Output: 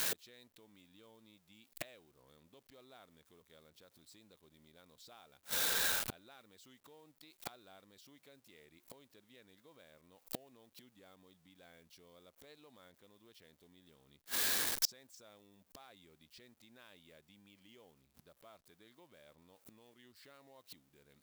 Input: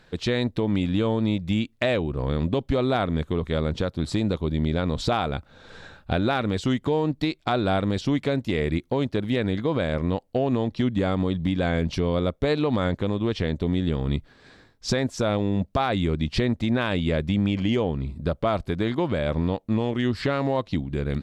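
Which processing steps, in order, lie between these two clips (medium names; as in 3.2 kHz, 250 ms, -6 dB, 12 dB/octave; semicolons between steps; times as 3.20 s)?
jump at every zero crossing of -36 dBFS; inverted gate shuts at -26 dBFS, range -35 dB; RIAA curve recording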